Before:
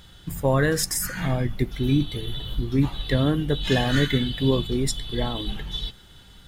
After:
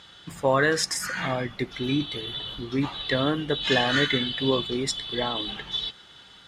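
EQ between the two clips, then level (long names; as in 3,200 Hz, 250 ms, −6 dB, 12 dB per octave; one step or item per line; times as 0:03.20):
high-pass filter 600 Hz 6 dB per octave
low-pass filter 5,600 Hz 12 dB per octave
parametric band 1,200 Hz +2.5 dB 0.28 octaves
+4.0 dB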